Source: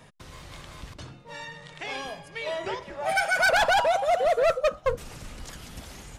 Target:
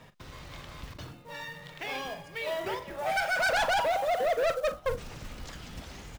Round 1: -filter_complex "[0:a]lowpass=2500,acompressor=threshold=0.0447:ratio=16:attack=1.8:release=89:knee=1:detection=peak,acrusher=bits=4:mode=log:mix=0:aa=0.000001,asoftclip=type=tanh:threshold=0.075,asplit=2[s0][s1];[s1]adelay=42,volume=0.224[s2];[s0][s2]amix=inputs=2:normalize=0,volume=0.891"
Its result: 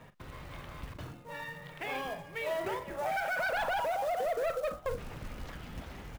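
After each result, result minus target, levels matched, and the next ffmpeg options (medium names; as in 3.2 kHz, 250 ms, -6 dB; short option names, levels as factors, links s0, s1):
compression: peak gain reduction +9 dB; 8 kHz band -2.5 dB
-filter_complex "[0:a]lowpass=2500,acrusher=bits=4:mode=log:mix=0:aa=0.000001,asoftclip=type=tanh:threshold=0.075,asplit=2[s0][s1];[s1]adelay=42,volume=0.224[s2];[s0][s2]amix=inputs=2:normalize=0,volume=0.891"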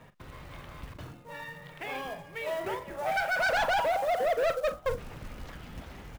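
8 kHz band -4.5 dB
-filter_complex "[0:a]lowpass=5800,acrusher=bits=4:mode=log:mix=0:aa=0.000001,asoftclip=type=tanh:threshold=0.075,asplit=2[s0][s1];[s1]adelay=42,volume=0.224[s2];[s0][s2]amix=inputs=2:normalize=0,volume=0.891"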